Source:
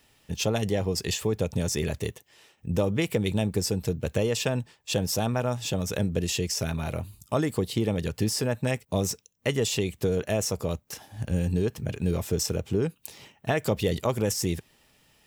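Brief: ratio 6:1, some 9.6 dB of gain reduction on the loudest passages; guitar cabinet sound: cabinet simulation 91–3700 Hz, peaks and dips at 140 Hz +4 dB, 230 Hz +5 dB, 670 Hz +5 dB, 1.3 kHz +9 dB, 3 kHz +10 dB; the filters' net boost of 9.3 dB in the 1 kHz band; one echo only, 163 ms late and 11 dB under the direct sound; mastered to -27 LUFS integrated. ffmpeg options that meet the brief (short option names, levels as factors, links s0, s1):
-af "equalizer=f=1000:t=o:g=7.5,acompressor=threshold=0.0316:ratio=6,highpass=91,equalizer=f=140:t=q:w=4:g=4,equalizer=f=230:t=q:w=4:g=5,equalizer=f=670:t=q:w=4:g=5,equalizer=f=1300:t=q:w=4:g=9,equalizer=f=3000:t=q:w=4:g=10,lowpass=f=3700:w=0.5412,lowpass=f=3700:w=1.3066,aecho=1:1:163:0.282,volume=2.11"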